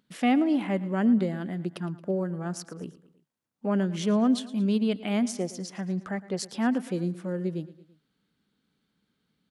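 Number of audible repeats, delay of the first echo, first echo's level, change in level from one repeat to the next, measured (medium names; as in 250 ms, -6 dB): 3, 112 ms, -18.0 dB, -5.0 dB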